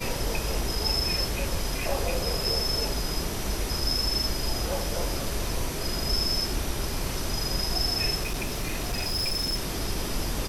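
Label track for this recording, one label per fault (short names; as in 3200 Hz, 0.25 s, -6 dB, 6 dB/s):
8.220000	9.600000	clipped -24 dBFS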